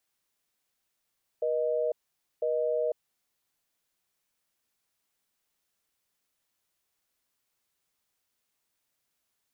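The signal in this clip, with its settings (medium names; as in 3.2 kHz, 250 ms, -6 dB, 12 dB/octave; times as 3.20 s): call progress tone busy tone, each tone -28 dBFS 1.74 s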